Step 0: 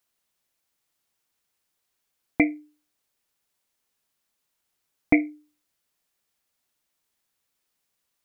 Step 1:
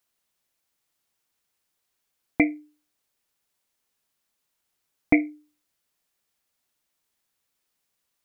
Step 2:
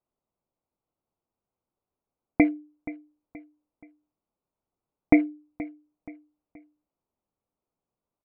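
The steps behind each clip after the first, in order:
no processing that can be heard
adaptive Wiener filter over 25 samples; low-pass filter 1,700 Hz 12 dB per octave; repeating echo 476 ms, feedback 40%, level −17 dB; level +2 dB

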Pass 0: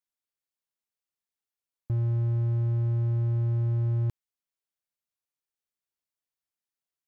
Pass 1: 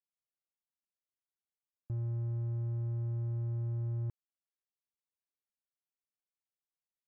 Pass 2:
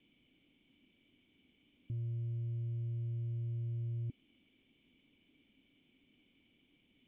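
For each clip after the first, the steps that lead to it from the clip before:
Bessel low-pass filter 1,300 Hz, order 2; level −9 dB
converter with a step at zero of −46 dBFS; formant resonators in series i; level +7.5 dB

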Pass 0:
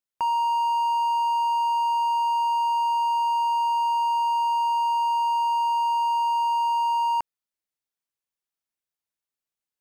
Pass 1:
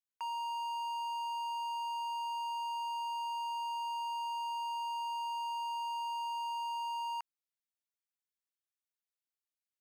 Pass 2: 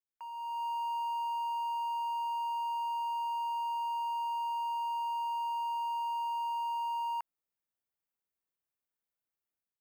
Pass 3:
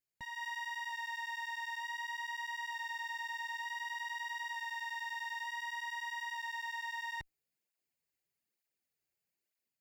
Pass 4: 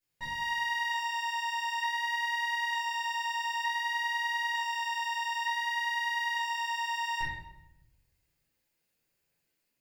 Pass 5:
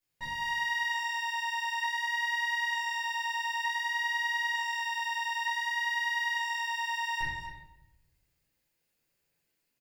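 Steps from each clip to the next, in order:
high-pass filter 1,300 Hz 12 dB per octave; level −8 dB
parametric band 5,300 Hz −12.5 dB 2.3 octaves; automatic gain control gain up to 10 dB; level −5 dB
lower of the sound and its delayed copy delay 0.42 ms; brickwall limiter −37 dBFS, peak gain reduction 5 dB; through-zero flanger with one copy inverted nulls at 1.1 Hz, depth 4.9 ms; level +7 dB
rectangular room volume 260 cubic metres, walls mixed, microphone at 4.5 metres; level −2 dB
single-tap delay 242 ms −11 dB

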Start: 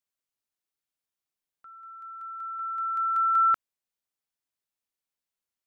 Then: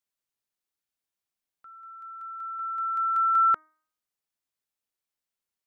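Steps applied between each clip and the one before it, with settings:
hum removal 311.9 Hz, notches 7
dynamic equaliser 360 Hz, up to +6 dB, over −46 dBFS, Q 0.87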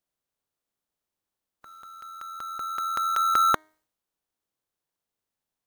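ceiling on every frequency bin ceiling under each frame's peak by 21 dB
in parallel at −6 dB: decimation without filtering 17×

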